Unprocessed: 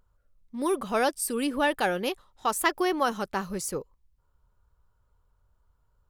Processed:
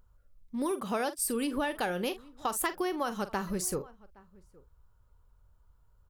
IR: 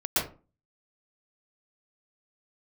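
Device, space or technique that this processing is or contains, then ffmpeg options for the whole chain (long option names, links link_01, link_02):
ASMR close-microphone chain: -filter_complex "[0:a]asettb=1/sr,asplit=3[link_01][link_02][link_03];[link_01]atrim=end=0.714[link_04];[link_02]atrim=start=0.71:end=1.19,asetpts=PTS-STARTPTS,afade=type=in:duration=0.004:curve=qsin,afade=type=out:start_time=0.476:duration=0.004:curve=qsin,highpass=100[link_05];[link_03]atrim=start=1.186[link_06];[link_04][link_05]acrossfade=duration=0.004:curve1=hsin:curve2=qsin[link_07];[link_07][link_06]acrossfade=duration=0.004:curve1=qsin:curve2=hsin,lowshelf=frequency=160:gain=5,asplit=2[link_08][link_09];[link_09]adelay=44,volume=-14dB[link_10];[link_08][link_10]amix=inputs=2:normalize=0,asplit=2[link_11][link_12];[link_12]adelay=816.3,volume=-27dB,highshelf=frequency=4000:gain=-18.4[link_13];[link_11][link_13]amix=inputs=2:normalize=0,acompressor=threshold=-28dB:ratio=6,highshelf=frequency=11000:gain=4.5"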